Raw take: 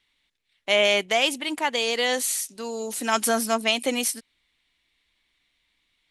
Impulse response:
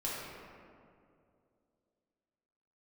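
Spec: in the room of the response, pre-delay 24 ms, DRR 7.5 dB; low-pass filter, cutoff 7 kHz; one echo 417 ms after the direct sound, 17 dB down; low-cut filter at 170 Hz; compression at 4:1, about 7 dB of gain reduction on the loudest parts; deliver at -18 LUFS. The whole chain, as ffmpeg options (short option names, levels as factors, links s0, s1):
-filter_complex "[0:a]highpass=170,lowpass=7000,acompressor=threshold=0.0631:ratio=4,aecho=1:1:417:0.141,asplit=2[s0][s1];[1:a]atrim=start_sample=2205,adelay=24[s2];[s1][s2]afir=irnorm=-1:irlink=0,volume=0.251[s3];[s0][s3]amix=inputs=2:normalize=0,volume=3.35"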